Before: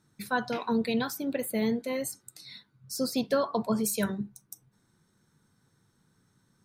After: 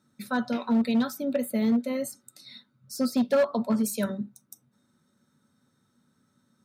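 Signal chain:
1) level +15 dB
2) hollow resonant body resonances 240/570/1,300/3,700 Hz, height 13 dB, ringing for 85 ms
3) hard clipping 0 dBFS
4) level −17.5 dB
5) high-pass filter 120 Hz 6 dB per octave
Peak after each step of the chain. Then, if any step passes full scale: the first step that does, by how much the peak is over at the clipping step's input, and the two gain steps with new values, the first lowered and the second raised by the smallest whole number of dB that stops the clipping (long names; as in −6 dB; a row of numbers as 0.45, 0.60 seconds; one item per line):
−0.5, +6.5, 0.0, −17.5, −15.5 dBFS
step 2, 6.5 dB
step 1 +8 dB, step 4 −10.5 dB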